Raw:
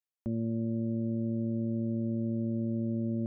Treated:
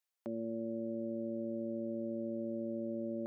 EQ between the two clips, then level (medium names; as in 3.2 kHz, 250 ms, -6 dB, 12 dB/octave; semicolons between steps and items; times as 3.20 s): high-pass 480 Hz 12 dB/octave; +4.5 dB